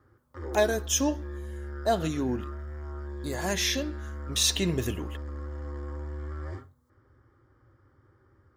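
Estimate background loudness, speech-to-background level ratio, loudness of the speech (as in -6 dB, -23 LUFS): -39.0 LUFS, 10.5 dB, -28.5 LUFS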